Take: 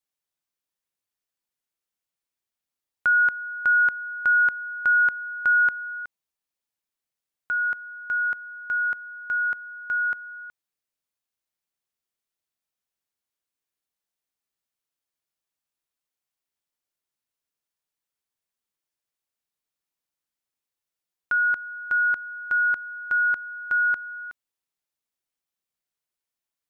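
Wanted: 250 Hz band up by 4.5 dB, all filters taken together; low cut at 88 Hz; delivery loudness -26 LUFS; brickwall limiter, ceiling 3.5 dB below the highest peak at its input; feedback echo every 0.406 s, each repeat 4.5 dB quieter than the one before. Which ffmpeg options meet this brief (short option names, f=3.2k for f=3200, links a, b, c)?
-af "highpass=88,equalizer=f=250:t=o:g=6,alimiter=limit=-18dB:level=0:latency=1,aecho=1:1:406|812|1218|1624|2030|2436|2842|3248|3654:0.596|0.357|0.214|0.129|0.0772|0.0463|0.0278|0.0167|0.01,volume=-1.5dB"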